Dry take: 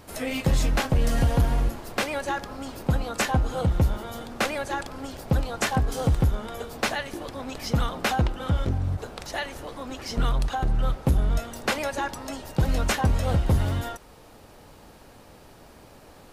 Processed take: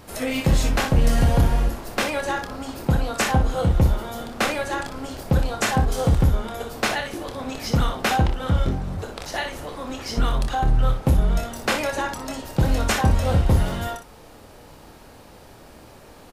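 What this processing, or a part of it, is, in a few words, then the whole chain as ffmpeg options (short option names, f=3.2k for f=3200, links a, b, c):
slapback doubling: -filter_complex "[0:a]asplit=3[a][b][c];[b]adelay=27,volume=-8dB[d];[c]adelay=60,volume=-8dB[e];[a][d][e]amix=inputs=3:normalize=0,volume=2.5dB"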